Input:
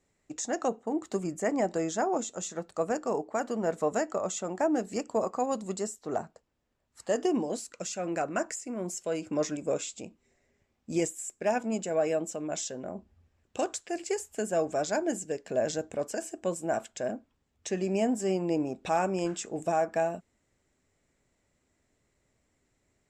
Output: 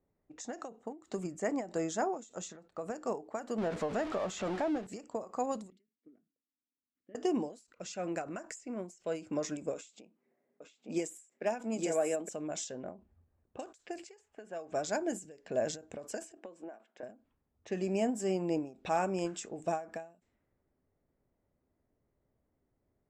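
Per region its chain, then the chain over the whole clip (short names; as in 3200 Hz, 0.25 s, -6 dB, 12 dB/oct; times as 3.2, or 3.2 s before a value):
3.58–4.87 zero-crossing step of -31.5 dBFS + LPF 4000 Hz + compressor 2.5:1, threshold -26 dBFS
5.7–7.15 vowel filter i + level quantiser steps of 10 dB
9.74–12.29 HPF 180 Hz 24 dB/oct + echo 0.862 s -3.5 dB
14.04–14.72 low shelf 320 Hz -11 dB + compressor 1.5:1, threshold -44 dBFS
16.37–17.03 HPF 230 Hz 24 dB/oct + compressor 5:1, threshold -37 dBFS
whole clip: low-pass opened by the level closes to 970 Hz, open at -29 dBFS; ending taper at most 160 dB/s; gain -3.5 dB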